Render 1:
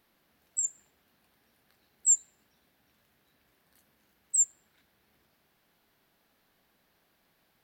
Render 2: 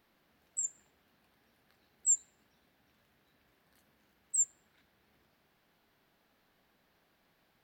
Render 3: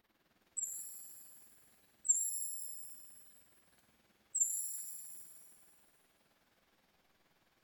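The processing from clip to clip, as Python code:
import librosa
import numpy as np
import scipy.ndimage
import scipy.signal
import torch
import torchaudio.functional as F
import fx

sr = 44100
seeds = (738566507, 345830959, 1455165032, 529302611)

y1 = fx.peak_eq(x, sr, hz=12000.0, db=-7.0, octaves=1.7)
y2 = y1 * (1.0 - 0.97 / 2.0 + 0.97 / 2.0 * np.cos(2.0 * np.pi * 19.0 * (np.arange(len(y1)) / sr)))
y2 = fx.rev_shimmer(y2, sr, seeds[0], rt60_s=1.8, semitones=7, shimmer_db=-2, drr_db=4.0)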